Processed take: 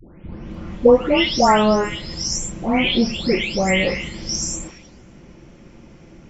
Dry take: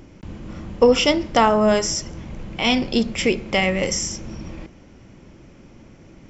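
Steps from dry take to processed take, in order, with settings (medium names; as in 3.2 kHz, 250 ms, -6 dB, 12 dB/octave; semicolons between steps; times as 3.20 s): delay that grows with frequency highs late, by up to 543 ms; trim +3 dB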